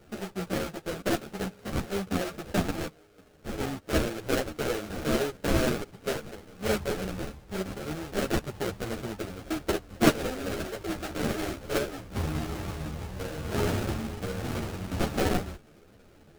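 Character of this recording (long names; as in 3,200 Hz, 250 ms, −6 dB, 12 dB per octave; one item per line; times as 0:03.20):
aliases and images of a low sample rate 1,000 Hz, jitter 20%
a shimmering, thickened sound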